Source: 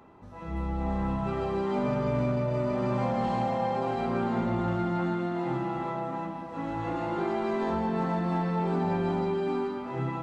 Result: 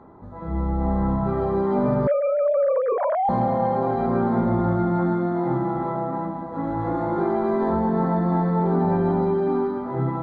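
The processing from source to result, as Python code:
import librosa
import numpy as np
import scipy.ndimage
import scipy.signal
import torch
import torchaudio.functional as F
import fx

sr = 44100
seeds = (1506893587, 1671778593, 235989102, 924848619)

y = fx.sine_speech(x, sr, at=(2.07, 3.29))
y = scipy.signal.lfilter(np.full(16, 1.0 / 16), 1.0, y)
y = y * 10.0 ** (7.5 / 20.0)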